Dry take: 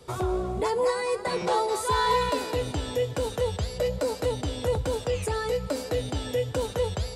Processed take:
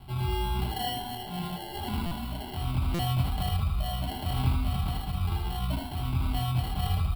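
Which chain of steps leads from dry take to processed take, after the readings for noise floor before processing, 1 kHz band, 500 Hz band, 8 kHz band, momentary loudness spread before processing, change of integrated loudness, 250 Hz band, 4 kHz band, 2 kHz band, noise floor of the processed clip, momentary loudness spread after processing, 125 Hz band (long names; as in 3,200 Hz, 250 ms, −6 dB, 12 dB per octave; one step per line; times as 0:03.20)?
−38 dBFS, −6.0 dB, −17.0 dB, −8.5 dB, 5 LU, −3.0 dB, −0.5 dB, −1.5 dB, −7.5 dB, −39 dBFS, 7 LU, +5.0 dB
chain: low-shelf EQ 330 Hz +11.5 dB
mains-hum notches 50/100/150/200/250/300/350/400/450 Hz
comb filter 4.8 ms, depth 36%
brickwall limiter −20.5 dBFS, peak gain reduction 11.5 dB
upward compression, threshold −39 dBFS
rotating-speaker cabinet horn 0.9 Hz, later 6.7 Hz, at 0:05.35
multi-voice chorus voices 6, 0.53 Hz, delay 23 ms, depth 1.4 ms
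decimation without filtering 36×
phaser with its sweep stopped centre 1,800 Hz, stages 6
on a send: ambience of single reflections 62 ms −9.5 dB, 78 ms −3.5 dB
on the sum: buffer that repeats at 0:02.06/0:02.94, samples 256, times 8
level +1.5 dB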